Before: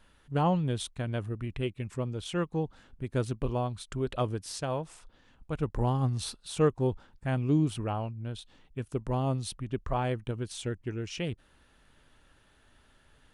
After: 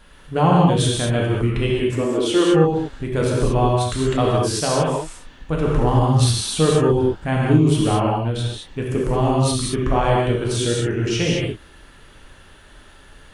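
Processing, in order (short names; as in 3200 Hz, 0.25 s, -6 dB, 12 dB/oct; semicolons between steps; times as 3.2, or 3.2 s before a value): 1.84–2.49 resonant low shelf 200 Hz -12 dB, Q 3; in parallel at +2.5 dB: limiter -26 dBFS, peak gain reduction 12 dB; on the sum: non-linear reverb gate 0.25 s flat, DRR -4 dB; gain +3.5 dB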